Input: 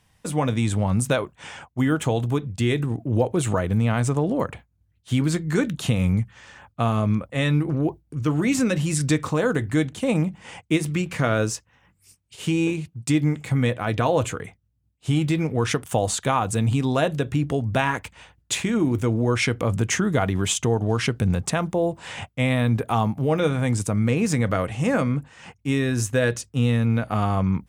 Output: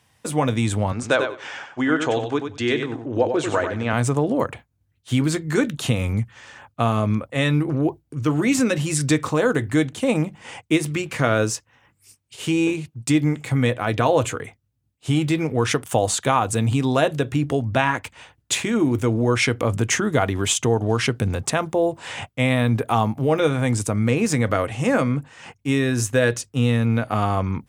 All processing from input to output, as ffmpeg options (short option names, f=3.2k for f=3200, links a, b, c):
-filter_complex "[0:a]asettb=1/sr,asplit=3[a][b][c];[a]atrim=end=0.924[d];[b]atrim=start=0.92:end=3.93,asetpts=PTS-STARTPTS,afade=t=in:d=0.004:c=qsin,afade=t=out:st=3.006:d=0.004:c=qsin,highpass=130,equalizer=f=130:t=q:w=4:g=-10,equalizer=f=200:t=q:w=4:g=-10,equalizer=f=1.6k:t=q:w=4:g=5,lowpass=f=6.5k:w=0.5412,lowpass=f=6.5k:w=1.3066,aecho=1:1:95|190|285:0.447|0.0715|0.0114,atrim=end_sample=132741[e];[c]atrim=start=3.926[f];[d][e]acrossfade=d=0.004:c1=hsin:c2=qsin[g];[g][f]acrossfade=d=0.004:c1=qsin:c2=hsin,asettb=1/sr,asplit=3[h][i][j];[h]atrim=end=17.634[k];[i]atrim=start=17.63:end=18.04,asetpts=PTS-STARTPTS,afade=t=in:d=0.004:c=qsin,afade=t=out:st=0.406:d=0.004:c=qsin,highshelf=f=9.1k:g=-10.5,bandreject=f=440:w=5.5[l];[j]atrim=start=18.036[m];[k][l]acrossfade=d=0.004:c1=hsin:c2=qsin[n];[n][m]acrossfade=d=0.004:c1=qsin:c2=hsin,highpass=100,equalizer=f=180:w=7.1:g=-14,volume=3dB"